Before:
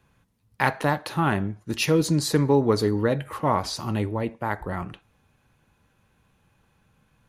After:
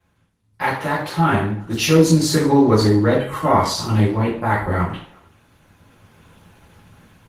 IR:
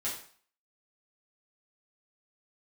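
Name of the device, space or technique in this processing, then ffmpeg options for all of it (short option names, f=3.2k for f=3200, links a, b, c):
speakerphone in a meeting room: -filter_complex "[1:a]atrim=start_sample=2205[a];[0:a][a]afir=irnorm=-1:irlink=0,asplit=2[b][c];[c]adelay=370,highpass=300,lowpass=3.4k,asoftclip=type=hard:threshold=-15.5dB,volume=-28dB[d];[b][d]amix=inputs=2:normalize=0,dynaudnorm=f=710:g=3:m=15.5dB,volume=-1dB" -ar 48000 -c:a libopus -b:a 16k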